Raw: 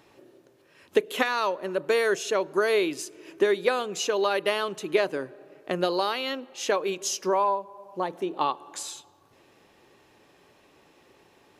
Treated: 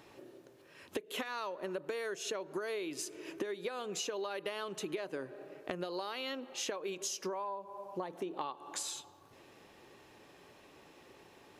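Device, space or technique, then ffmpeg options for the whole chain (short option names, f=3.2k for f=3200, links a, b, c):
serial compression, leveller first: -af "acompressor=threshold=-26dB:ratio=2.5,acompressor=threshold=-36dB:ratio=6"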